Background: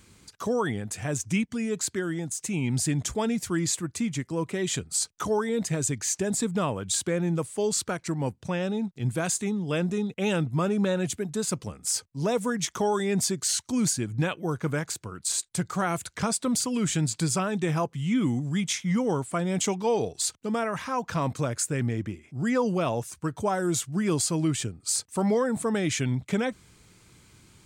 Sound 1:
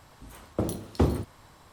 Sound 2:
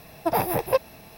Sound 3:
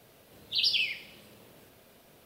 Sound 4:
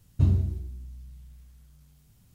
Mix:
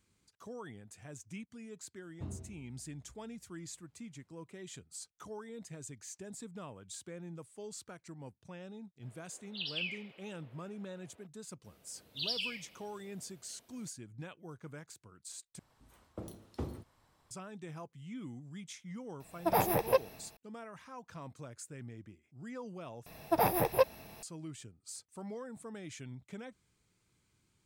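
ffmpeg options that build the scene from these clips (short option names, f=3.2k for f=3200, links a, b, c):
-filter_complex "[3:a]asplit=2[a][b];[2:a]asplit=2[c][d];[0:a]volume=-19.5dB[e];[4:a]bandpass=f=860:t=q:w=0.53:csg=0[f];[a]acrossover=split=320 3200:gain=0.0631 1 0.0708[g][h][i];[g][h][i]amix=inputs=3:normalize=0[j];[c]dynaudnorm=f=100:g=5:m=11.5dB[k];[e]asplit=3[l][m][n];[l]atrim=end=15.594[o];[1:a]atrim=end=1.72,asetpts=PTS-STARTPTS,volume=-16dB[p];[m]atrim=start=17.306:end=23.064[q];[d]atrim=end=1.17,asetpts=PTS-STARTPTS,volume=-5dB[r];[n]atrim=start=24.226[s];[f]atrim=end=2.34,asetpts=PTS-STARTPTS,volume=-9dB,afade=t=in:d=0.004:c=hsin,afade=t=out:st=2.336:d=0.004:c=hsin,adelay=2010[t];[j]atrim=end=2.25,asetpts=PTS-STARTPTS,volume=-5dB,afade=t=in:d=0.004:c=hsin,afade=t=out:st=2.246:d=0.004:c=hsin,adelay=9020[u];[b]atrim=end=2.25,asetpts=PTS-STARTPTS,volume=-9.5dB,afade=t=in:d=0.004:c=hsin,afade=t=out:st=2.246:d=0.004:c=hsin,adelay=11640[v];[k]atrim=end=1.17,asetpts=PTS-STARTPTS,volume=-13dB,afade=t=in:d=0.004:c=hsin,afade=t=out:st=1.166:d=0.004:c=hsin,adelay=19200[w];[o][p]acrossfade=d=0.004:c1=hsin:c2=hsin[x];[x][q]acrossfade=d=0.004:c1=hsin:c2=hsin[y];[y][r]acrossfade=d=0.004:c1=hsin:c2=hsin[z];[z][s]acrossfade=d=0.004:c1=hsin:c2=hsin[aa];[aa][t][u][v][w]amix=inputs=5:normalize=0"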